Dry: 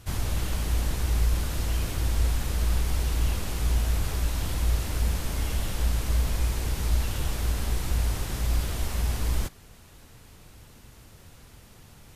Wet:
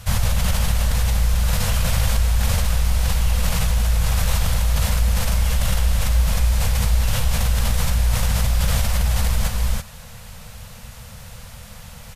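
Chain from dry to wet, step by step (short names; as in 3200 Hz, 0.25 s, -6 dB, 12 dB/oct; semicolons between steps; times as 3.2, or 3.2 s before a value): elliptic band-stop 220–480 Hz; echo 0.333 s -5.5 dB; in parallel at -2 dB: negative-ratio compressor -28 dBFS, ratio -0.5; on the sum: gain +4 dB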